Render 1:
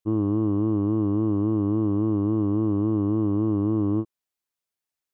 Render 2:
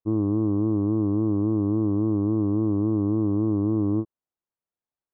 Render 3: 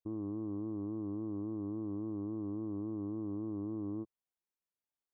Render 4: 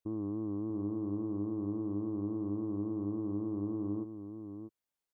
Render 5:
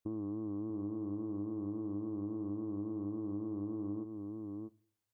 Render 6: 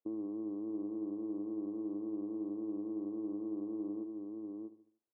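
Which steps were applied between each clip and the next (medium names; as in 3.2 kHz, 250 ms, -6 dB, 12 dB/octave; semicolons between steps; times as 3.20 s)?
low-pass 1.1 kHz 12 dB/octave
peaking EQ 110 Hz -4.5 dB 0.84 oct; peak limiter -26 dBFS, peak gain reduction 9.5 dB; trim -6 dB
echo from a far wall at 110 m, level -8 dB; trim +2.5 dB
compression, threshold -37 dBFS, peak gain reduction 6 dB; on a send at -19 dB: reverberation RT60 0.55 s, pre-delay 3 ms; on the sum: trim +1 dB
ladder band-pass 460 Hz, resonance 20%; feedback delay 74 ms, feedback 46%, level -14 dB; trim +11.5 dB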